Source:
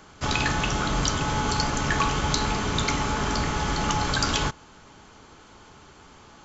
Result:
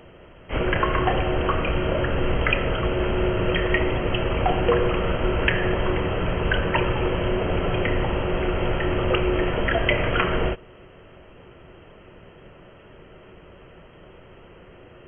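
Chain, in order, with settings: bell 900 Hz +2 dB; speed mistake 78 rpm record played at 33 rpm; gain +2.5 dB

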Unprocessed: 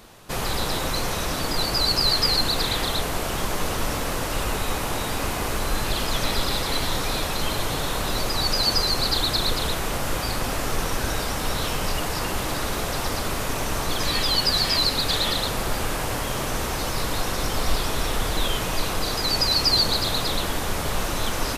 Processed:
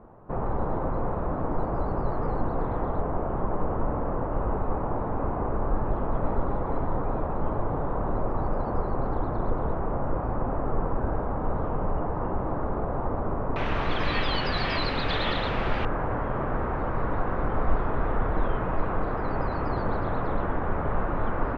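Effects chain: LPF 1100 Hz 24 dB/oct, from 13.56 s 2900 Hz, from 15.85 s 1500 Hz

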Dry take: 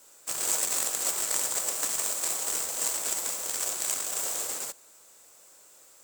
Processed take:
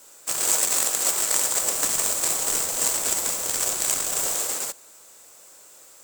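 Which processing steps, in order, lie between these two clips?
1.62–4.35 low shelf 190 Hz +9.5 dB; gain +6 dB

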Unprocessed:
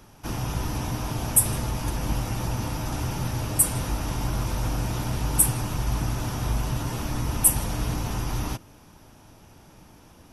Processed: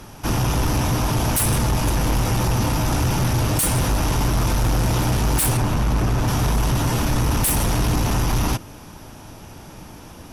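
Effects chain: 5.57–6.28 high shelf 3800 Hz -8 dB; in parallel at -7.5 dB: sine folder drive 20 dB, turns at -3 dBFS; on the sum: gain -6.5 dB

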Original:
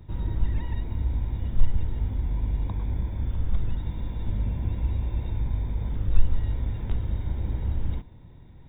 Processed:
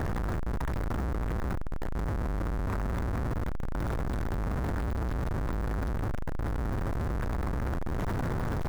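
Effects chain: infinite clipping; resonant high shelf 2100 Hz -9 dB, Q 1.5; gain -6.5 dB

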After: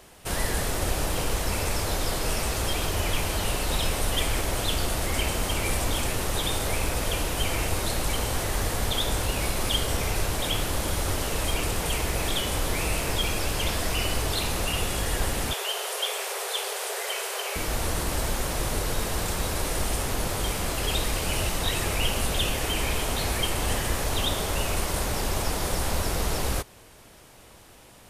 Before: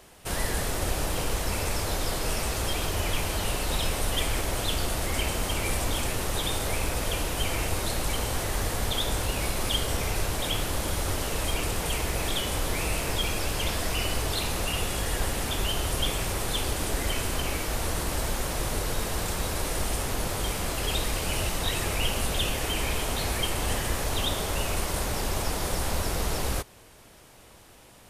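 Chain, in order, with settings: 15.53–17.56 Chebyshev high-pass 390 Hz, order 8; gain +1.5 dB

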